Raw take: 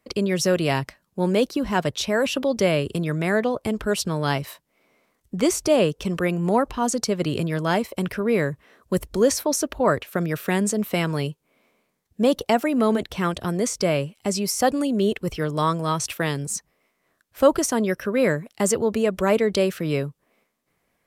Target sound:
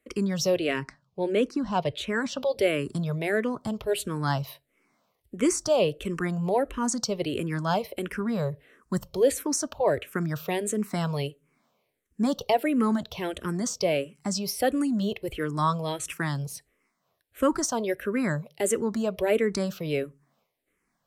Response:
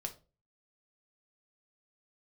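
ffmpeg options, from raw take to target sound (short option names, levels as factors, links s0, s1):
-filter_complex "[0:a]asettb=1/sr,asplit=3[s0][s1][s2];[s0]atrim=end=0.564[s3];[s1]atrim=start=0.56:end=2.4,asetpts=PTS-STARTPTS,afade=t=in:d=0.004:c=qsin,afade=t=out:st=1.836:d=0.004:c=qsin,adynamicsmooth=sensitivity=1:basefreq=7300[s4];[s2]atrim=start=2.396[s5];[s3][s4]acrossfade=d=0.004:c1=hsin:c2=qsin[s6];[s6][s5]acrossfade=d=0.004:c1=qsin:c2=hsin,asplit=2[s7][s8];[1:a]atrim=start_sample=2205[s9];[s8][s9]afir=irnorm=-1:irlink=0,volume=0.211[s10];[s7][s10]amix=inputs=2:normalize=0,asplit=2[s11][s12];[s12]afreqshift=-1.5[s13];[s11][s13]amix=inputs=2:normalize=1,volume=0.708"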